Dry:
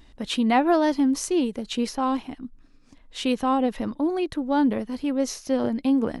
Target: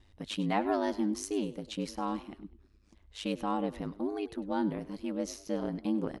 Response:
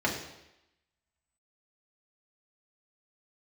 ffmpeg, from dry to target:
-filter_complex "[0:a]aeval=exprs='val(0)*sin(2*PI*51*n/s)':c=same,asplit=4[a][b][c][d];[b]adelay=100,afreqshift=38,volume=-18dB[e];[c]adelay=200,afreqshift=76,volume=-26.6dB[f];[d]adelay=300,afreqshift=114,volume=-35.3dB[g];[a][e][f][g]amix=inputs=4:normalize=0,volume=-7dB"

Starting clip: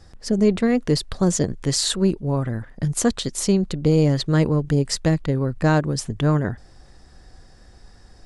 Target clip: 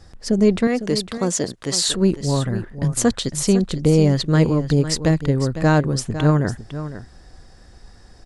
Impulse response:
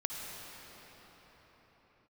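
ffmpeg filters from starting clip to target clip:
-filter_complex "[0:a]asettb=1/sr,asplit=3[a][b][c];[a]atrim=end=0.674[d];[b]atrim=start=0.67:end=1.89,asetpts=PTS-STARTPTS,afade=t=in:d=0.004:c=qsin,afade=t=out:st=1.216:d=0.004:c=qsin,highpass=f=370:p=1[e];[c]atrim=start=1.886[f];[d][e]acrossfade=d=0.004:c1=hsin:c2=qsin[g];[g][f]acrossfade=d=0.004:c1=qsin:c2=hsin,aecho=1:1:504:0.251,volume=2dB"

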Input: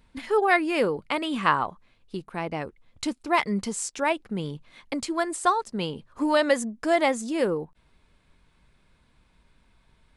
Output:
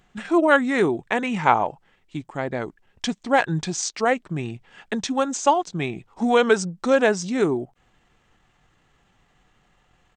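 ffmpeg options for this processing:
-af "lowshelf=f=120:g=-9.5,asetrate=35002,aresample=44100,atempo=1.25992,volume=4.5dB"

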